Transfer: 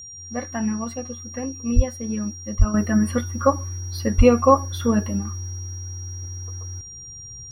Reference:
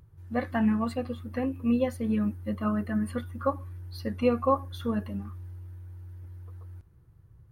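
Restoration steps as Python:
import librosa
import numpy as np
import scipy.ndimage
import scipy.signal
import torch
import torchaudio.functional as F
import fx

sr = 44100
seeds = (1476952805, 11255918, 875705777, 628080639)

y = fx.notch(x, sr, hz=5700.0, q=30.0)
y = fx.highpass(y, sr, hz=140.0, slope=24, at=(1.75, 1.87), fade=0.02)
y = fx.highpass(y, sr, hz=140.0, slope=24, at=(2.58, 2.7), fade=0.02)
y = fx.highpass(y, sr, hz=140.0, slope=24, at=(4.17, 4.29), fade=0.02)
y = fx.fix_level(y, sr, at_s=2.74, step_db=-9.5)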